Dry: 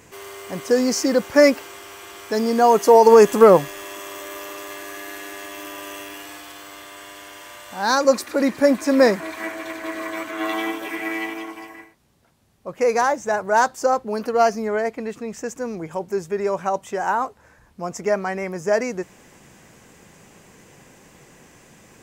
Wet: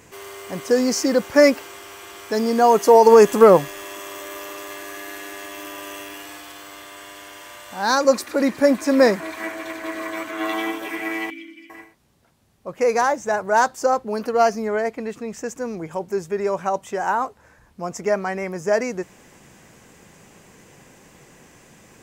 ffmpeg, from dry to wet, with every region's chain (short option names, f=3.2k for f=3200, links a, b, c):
-filter_complex "[0:a]asettb=1/sr,asplit=3[a][b][c];[a]atrim=end=11.304[d];[b]atrim=start=11.3:end=11.7,asetpts=PTS-STARTPTS,afade=t=in:d=0.004:c=qsin,afade=t=out:st=0.396:d=0.004:c=qsin,asplit=3[e][f][g];[e]bandpass=f=270:t=q:w=8,volume=0dB[h];[f]bandpass=f=2.29k:t=q:w=8,volume=-6dB[i];[g]bandpass=f=3.01k:t=q:w=8,volume=-9dB[j];[h][i][j]amix=inputs=3:normalize=0,aemphasis=mode=production:type=75kf,aecho=1:1:3.4:0.81,atrim=end_sample=17640[k];[c]atrim=start=11.696[l];[d][k]acrossfade=d=0.004:c1=hsin:c2=qsin[m];[m][l]acrossfade=d=0.004:c1=qsin:c2=hsin"